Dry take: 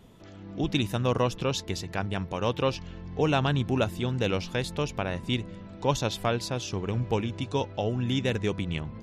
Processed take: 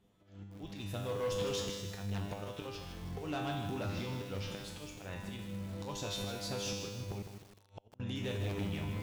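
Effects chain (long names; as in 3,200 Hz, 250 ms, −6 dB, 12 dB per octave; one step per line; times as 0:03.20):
0:03.81–0:04.50: variable-slope delta modulation 32 kbit/s
noise gate with hold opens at −38 dBFS
volume swells 759 ms
brickwall limiter −26.5 dBFS, peak gain reduction 11.5 dB
downward compressor 6 to 1, threshold −38 dBFS, peak gain reduction 7.5 dB
tuned comb filter 100 Hz, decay 0.92 s, harmonics all, mix 90%
0:07.21–0:08.00: gate with flip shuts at −51 dBFS, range −28 dB
harmonic generator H 5 −7 dB, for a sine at −39 dBFS
feedback echo at a low word length 156 ms, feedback 55%, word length 10 bits, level −7 dB
level +9 dB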